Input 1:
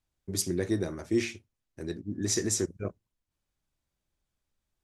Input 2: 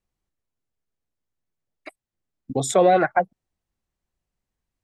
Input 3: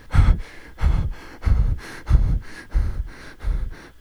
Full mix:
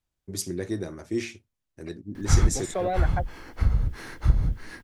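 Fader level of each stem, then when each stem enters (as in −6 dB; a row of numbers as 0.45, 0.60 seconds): −1.5, −11.5, −4.0 decibels; 0.00, 0.00, 2.15 seconds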